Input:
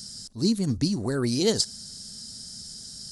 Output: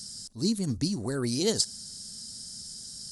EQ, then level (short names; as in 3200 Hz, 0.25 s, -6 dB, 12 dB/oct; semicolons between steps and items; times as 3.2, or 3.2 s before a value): bell 9500 Hz +5.5 dB 1.2 oct; -4.0 dB